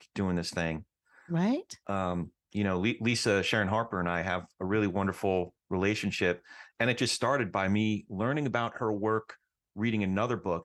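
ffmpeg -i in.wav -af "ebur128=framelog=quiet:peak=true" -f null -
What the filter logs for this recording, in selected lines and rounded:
Integrated loudness:
  I:         -30.4 LUFS
  Threshold: -40.7 LUFS
Loudness range:
  LRA:         1.3 LU
  Threshold: -50.3 LUFS
  LRA low:   -31.1 LUFS
  LRA high:  -29.8 LUFS
True peak:
  Peak:      -11.2 dBFS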